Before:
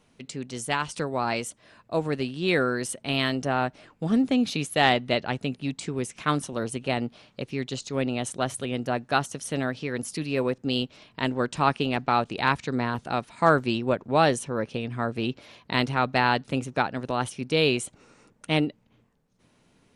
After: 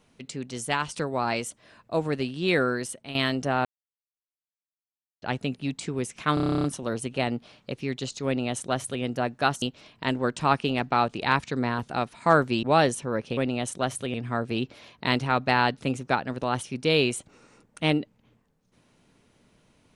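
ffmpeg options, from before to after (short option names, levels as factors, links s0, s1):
-filter_complex "[0:a]asplit=18[s0][s1][s2][s3][s4][s5][s6][s7][s8][s9][s10][s11][s12][s13][s14][s15][s16][s17];[s0]atrim=end=3.15,asetpts=PTS-STARTPTS,afade=t=out:st=2.71:d=0.44:silence=0.251189[s18];[s1]atrim=start=3.15:end=3.65,asetpts=PTS-STARTPTS,afade=t=in:d=0.004:c=hsin:silence=0.251189,afade=t=out:st=0.496:d=0.004:c=hsin[s19];[s2]atrim=start=3.65:end=5.22,asetpts=PTS-STARTPTS,volume=0[s20];[s3]atrim=start=5.22:end=6.372,asetpts=PTS-STARTPTS,afade=t=in:d=0.004:c=hsin[s21];[s4]atrim=start=6.338:end=6.372[s22];[s5]atrim=start=6.338:end=6.372[s23];[s6]atrim=start=6.338:end=6.372[s24];[s7]atrim=start=6.338:end=6.372[s25];[s8]atrim=start=6.338:end=6.372[s26];[s9]atrim=start=6.338:end=6.372[s27];[s10]atrim=start=6.338:end=6.372[s28];[s11]atrim=start=6.338:end=6.372[s29];[s12]atrim=start=6.338:end=6.372[s30];[s13]atrim=start=6.338:end=9.322[s31];[s14]atrim=start=10.778:end=13.792[s32];[s15]atrim=start=14.068:end=14.812[s33];[s16]atrim=start=7.958:end=8.732[s34];[s17]atrim=start=14.808[s35];[s18][s19][s20][s21]concat=n=4:v=0:a=1[s36];[s36][s22]acrossfade=d=0.004:c1=hsin:c2=hsin[s37];[s37][s23]acrossfade=d=0.004:c1=hsin:c2=hsin[s38];[s38][s24]acrossfade=d=0.004:c1=hsin:c2=hsin[s39];[s39][s25]acrossfade=d=0.004:c1=hsin:c2=hsin[s40];[s40][s26]acrossfade=d=0.004:c1=hsin:c2=hsin[s41];[s41][s27]acrossfade=d=0.004:c1=hsin:c2=hsin[s42];[s42][s28]acrossfade=d=0.004:c1=hsin:c2=hsin[s43];[s43][s29]acrossfade=d=0.004:c1=hsin:c2=hsin[s44];[s44][s30]acrossfade=d=0.004:c1=hsin:c2=hsin[s45];[s45][s31]acrossfade=d=0.004:c1=hsin:c2=hsin[s46];[s46][s32]acrossfade=d=0.004:c1=hsin:c2=hsin[s47];[s47][s33]acrossfade=d=0.004:c1=hsin:c2=hsin[s48];[s48][s34]acrossfade=d=0.004:c1=hsin:c2=hsin[s49];[s49][s35]acrossfade=d=0.004:c1=hsin:c2=hsin"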